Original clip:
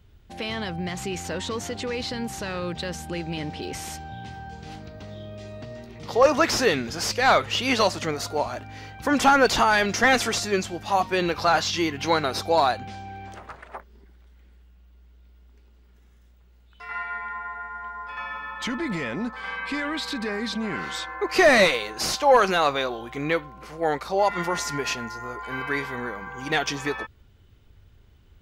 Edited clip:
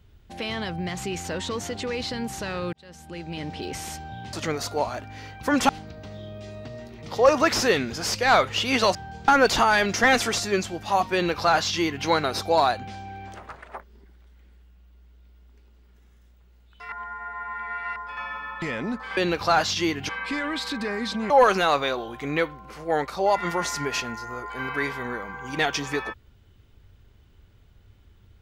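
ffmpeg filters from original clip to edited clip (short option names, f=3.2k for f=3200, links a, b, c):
-filter_complex "[0:a]asplit=12[a][b][c][d][e][f][g][h][i][j][k][l];[a]atrim=end=2.73,asetpts=PTS-STARTPTS,afade=t=out:st=2.726:d=0.004:c=hsin[m];[b]atrim=start=2.73:end=4.332,asetpts=PTS-STARTPTS,afade=t=in:d=0.87[n];[c]atrim=start=7.918:end=9.282[o];[d]atrim=start=4.658:end=7.922[p];[e]atrim=start=4.328:end=4.662[q];[f]atrim=start=9.278:end=16.922[r];[g]atrim=start=16.918:end=17.962,asetpts=PTS-STARTPTS,areverse[s];[h]atrim=start=17.958:end=18.622[t];[i]atrim=start=18.948:end=19.502[u];[j]atrim=start=11.138:end=12.062[v];[k]atrim=start=19.498:end=20.712[w];[l]atrim=start=22.228[x];[m][n]concat=n=2:v=0:a=1[y];[y][o]acrossfade=d=0.004:c1=hsin:c2=hsin[z];[z][p]acrossfade=d=0.004:c1=hsin:c2=hsin[aa];[aa][q]acrossfade=d=0.004:c1=hsin:c2=hsin[ab];[ab][r]acrossfade=d=0.004:c1=hsin:c2=hsin[ac];[ac][s]acrossfade=d=0.004:c1=hsin:c2=hsin[ad];[ad][t]acrossfade=d=0.004:c1=hsin:c2=hsin[ae];[ae][u]acrossfade=d=0.004:c1=hsin:c2=hsin[af];[af][v]acrossfade=d=0.004:c1=hsin:c2=hsin[ag];[ag][w]acrossfade=d=0.004:c1=hsin:c2=hsin[ah];[ah][x]acrossfade=d=0.004:c1=hsin:c2=hsin"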